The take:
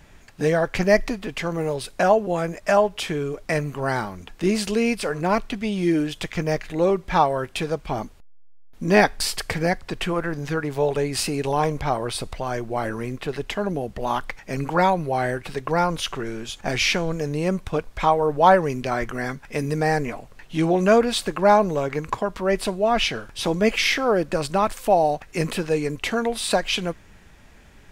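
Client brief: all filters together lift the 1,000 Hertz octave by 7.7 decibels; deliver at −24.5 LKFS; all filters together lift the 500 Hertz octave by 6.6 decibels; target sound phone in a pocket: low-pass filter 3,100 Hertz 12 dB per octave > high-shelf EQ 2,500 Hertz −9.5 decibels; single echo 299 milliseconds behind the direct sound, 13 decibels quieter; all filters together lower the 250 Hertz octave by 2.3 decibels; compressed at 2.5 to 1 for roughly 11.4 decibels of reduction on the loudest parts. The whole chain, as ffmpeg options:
ffmpeg -i in.wav -af "equalizer=frequency=250:width_type=o:gain=-7,equalizer=frequency=500:width_type=o:gain=7.5,equalizer=frequency=1000:width_type=o:gain=9,acompressor=threshold=-20dB:ratio=2.5,lowpass=3100,highshelf=frequency=2500:gain=-9.5,aecho=1:1:299:0.224" out.wav

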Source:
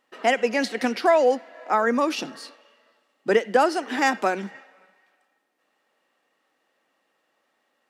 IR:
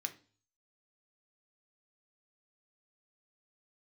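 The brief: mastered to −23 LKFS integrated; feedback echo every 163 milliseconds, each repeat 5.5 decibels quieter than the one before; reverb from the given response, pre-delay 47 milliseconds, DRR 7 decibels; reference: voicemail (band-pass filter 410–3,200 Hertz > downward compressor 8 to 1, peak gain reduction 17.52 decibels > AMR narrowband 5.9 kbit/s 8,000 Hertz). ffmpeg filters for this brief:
-filter_complex "[0:a]aecho=1:1:163|326|489|652|815|978|1141:0.531|0.281|0.149|0.079|0.0419|0.0222|0.0118,asplit=2[link_01][link_02];[1:a]atrim=start_sample=2205,adelay=47[link_03];[link_02][link_03]afir=irnorm=-1:irlink=0,volume=-6.5dB[link_04];[link_01][link_04]amix=inputs=2:normalize=0,highpass=410,lowpass=3200,acompressor=threshold=-32dB:ratio=8,volume=15dB" -ar 8000 -c:a libopencore_amrnb -b:a 5900

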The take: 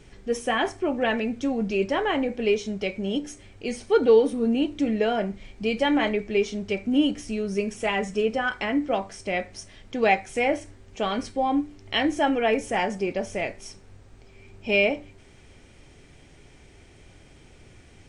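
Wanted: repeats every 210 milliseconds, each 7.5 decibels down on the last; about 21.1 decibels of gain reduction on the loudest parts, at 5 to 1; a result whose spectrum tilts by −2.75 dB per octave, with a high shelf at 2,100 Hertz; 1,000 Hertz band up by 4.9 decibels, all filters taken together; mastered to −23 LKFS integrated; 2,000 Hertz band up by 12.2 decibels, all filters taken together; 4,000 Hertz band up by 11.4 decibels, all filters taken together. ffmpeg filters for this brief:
ffmpeg -i in.wav -af "equalizer=frequency=1000:width_type=o:gain=3.5,equalizer=frequency=2000:width_type=o:gain=8,highshelf=frequency=2100:gain=8.5,equalizer=frequency=4000:width_type=o:gain=3.5,acompressor=threshold=-32dB:ratio=5,aecho=1:1:210|420|630|840|1050:0.422|0.177|0.0744|0.0312|0.0131,volume=10.5dB" out.wav

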